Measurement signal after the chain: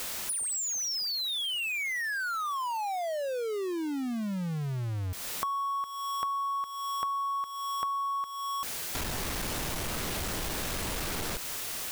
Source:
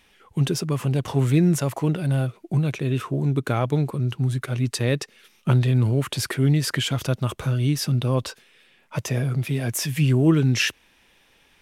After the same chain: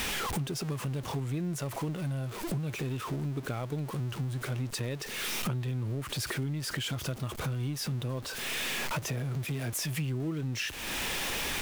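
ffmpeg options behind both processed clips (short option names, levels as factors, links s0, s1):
-af "aeval=exprs='val(0)+0.5*0.0473*sgn(val(0))':c=same,acompressor=threshold=0.0251:ratio=6"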